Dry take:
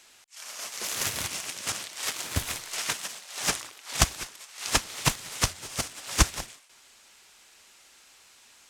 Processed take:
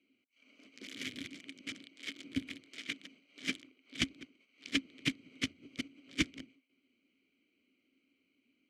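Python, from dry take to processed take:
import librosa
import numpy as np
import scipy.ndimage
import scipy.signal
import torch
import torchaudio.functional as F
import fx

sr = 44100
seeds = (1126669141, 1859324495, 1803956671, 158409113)

y = fx.wiener(x, sr, points=25)
y = fx.vowel_filter(y, sr, vowel='i')
y = F.gain(torch.from_numpy(y), 7.0).numpy()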